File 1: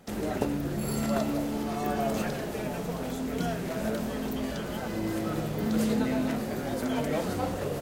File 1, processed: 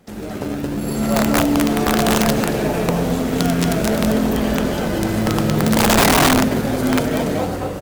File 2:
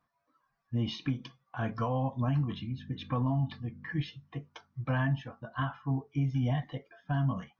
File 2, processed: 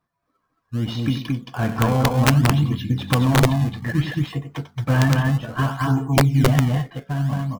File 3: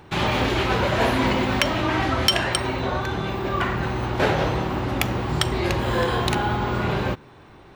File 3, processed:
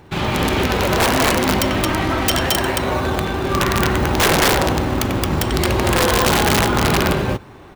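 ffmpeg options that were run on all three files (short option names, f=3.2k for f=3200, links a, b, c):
-filter_complex "[0:a]dynaudnorm=f=220:g=9:m=8.5dB,aecho=1:1:93.29|221.6:0.316|0.794,asplit=2[a][b];[b]acrusher=samples=27:mix=1:aa=0.000001:lfo=1:lforange=43.2:lforate=0.62,volume=-7.5dB[c];[a][c]amix=inputs=2:normalize=0,aeval=exprs='(mod(2.51*val(0)+1,2)-1)/2.51':c=same"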